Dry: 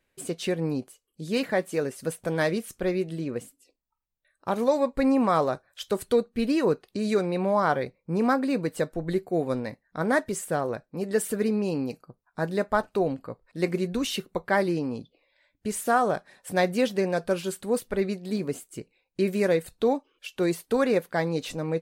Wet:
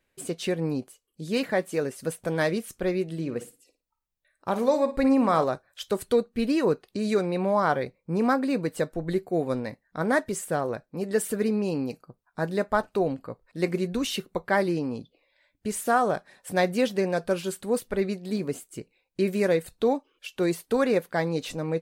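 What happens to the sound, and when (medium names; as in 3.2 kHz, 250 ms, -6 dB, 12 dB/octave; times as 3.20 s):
3.13–5.44 s: flutter echo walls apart 9.6 m, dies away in 0.27 s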